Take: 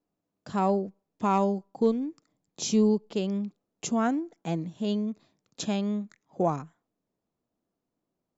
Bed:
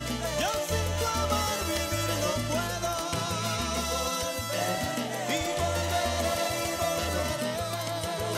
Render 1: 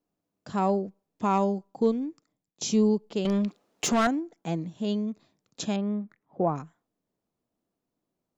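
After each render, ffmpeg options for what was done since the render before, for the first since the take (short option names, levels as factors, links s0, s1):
-filter_complex "[0:a]asettb=1/sr,asplit=3[s0][s1][s2];[s0]atrim=end=3.254[s3];[s1]atrim=start=3.25:end=4.07,asetpts=PTS-STARTPTS,afade=t=in:d=0.004:c=qsin,afade=t=out:st=0.816:d=0.004:c=qsin,asplit=2[s4][s5];[s5]highpass=f=720:p=1,volume=15.8,asoftclip=type=tanh:threshold=0.168[s6];[s4][s6]amix=inputs=2:normalize=0,lowpass=f=4600:p=1,volume=0.501[s7];[s2]atrim=start=4.066[s8];[s3][s7]acrossfade=d=0.004:c1=hsin:c2=qsin[s9];[s9][s8]acrossfade=d=0.004:c1=qsin:c2=hsin,asettb=1/sr,asplit=3[s10][s11][s12];[s10]atrim=end=5.764[s13];[s11]atrim=start=5.76:end=6.56,asetpts=PTS-STARTPTS,afade=t=in:d=0.004:c=qsin,afade=t=out:st=0.796:d=0.004:c=qsin,lowpass=1800[s14];[s12]atrim=start=6.556[s15];[s13][s14]acrossfade=d=0.004:c1=hsin:c2=qsin[s16];[s16][s15]acrossfade=d=0.004:c1=qsin:c2=hsin,asplit=2[s17][s18];[s17]atrim=end=2.61,asetpts=PTS-STARTPTS,afade=t=out:st=2.09:d=0.52:silence=0.0668344[s19];[s18]atrim=start=2.61,asetpts=PTS-STARTPTS,afade=t=in:d=0.004:c=hsin:silence=0.0668344[s20];[s19][s20]concat=n=2:v=0:a=1"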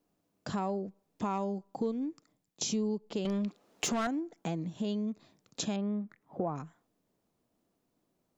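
-filter_complex "[0:a]asplit=2[s0][s1];[s1]alimiter=level_in=1.06:limit=0.0631:level=0:latency=1:release=144,volume=0.944,volume=0.891[s2];[s0][s2]amix=inputs=2:normalize=0,acompressor=threshold=0.0178:ratio=2.5"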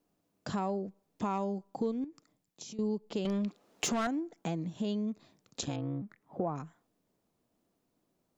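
-filter_complex "[0:a]asettb=1/sr,asplit=3[s0][s1][s2];[s0]atrim=end=2.044[s3];[s1]atrim=start=2.04:end=2.79,asetpts=PTS-STARTPTS,afade=t=in:d=0.004:c=qsin,afade=t=out:st=0.746:d=0.004:c=qsin,acompressor=threshold=0.00631:ratio=6:attack=3.2:release=140:knee=1:detection=peak[s4];[s2]atrim=start=2.786[s5];[s3][s4]acrossfade=d=0.004:c1=hsin:c2=qsin[s6];[s6][s5]acrossfade=d=0.004:c1=qsin:c2=hsin,asplit=3[s7][s8][s9];[s7]afade=t=out:st=5.6:d=0.02[s10];[s8]aeval=exprs='val(0)*sin(2*PI*71*n/s)':c=same,afade=t=in:st=5.6:d=0.02,afade=t=out:st=6.01:d=0.02[s11];[s9]afade=t=in:st=6.01:d=0.02[s12];[s10][s11][s12]amix=inputs=3:normalize=0"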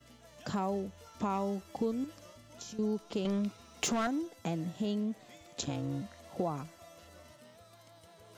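-filter_complex "[1:a]volume=0.0501[s0];[0:a][s0]amix=inputs=2:normalize=0"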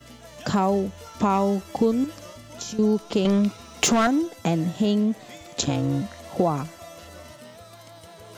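-af "volume=3.98"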